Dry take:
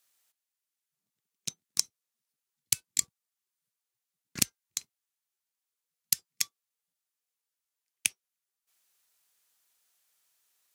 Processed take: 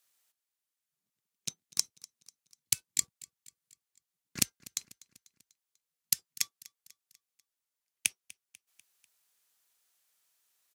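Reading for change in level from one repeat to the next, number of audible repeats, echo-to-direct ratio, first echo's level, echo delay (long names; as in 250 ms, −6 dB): −5.5 dB, 3, −20.0 dB, −21.5 dB, 246 ms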